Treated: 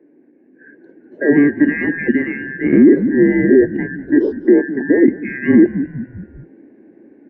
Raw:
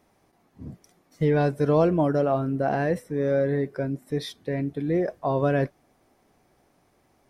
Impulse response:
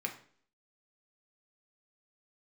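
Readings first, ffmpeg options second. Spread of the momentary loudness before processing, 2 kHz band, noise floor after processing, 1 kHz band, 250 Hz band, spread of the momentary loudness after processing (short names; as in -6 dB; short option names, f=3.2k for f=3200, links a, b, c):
10 LU, +15.0 dB, -51 dBFS, n/a, +15.5 dB, 12 LU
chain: -filter_complex "[0:a]afftfilt=real='real(if(lt(b,272),68*(eq(floor(b/68),0)*1+eq(floor(b/68),1)*0+eq(floor(b/68),2)*3+eq(floor(b/68),3)*2)+mod(b,68),b),0)':imag='imag(if(lt(b,272),68*(eq(floor(b/68),0)*1+eq(floor(b/68),1)*0+eq(floor(b/68),2)*3+eq(floor(b/68),3)*2)+mod(b,68),b),0)':win_size=2048:overlap=0.75,asuperpass=centerf=310:order=4:qfactor=2.4,asplit=5[a][b][c][d][e];[b]adelay=198,afreqshift=-46,volume=-17.5dB[f];[c]adelay=396,afreqshift=-92,volume=-23.5dB[g];[d]adelay=594,afreqshift=-138,volume=-29.5dB[h];[e]adelay=792,afreqshift=-184,volume=-35.6dB[i];[a][f][g][h][i]amix=inputs=5:normalize=0,dynaudnorm=f=630:g=3:m=7dB,alimiter=level_in=35.5dB:limit=-1dB:release=50:level=0:latency=1,volume=-1dB"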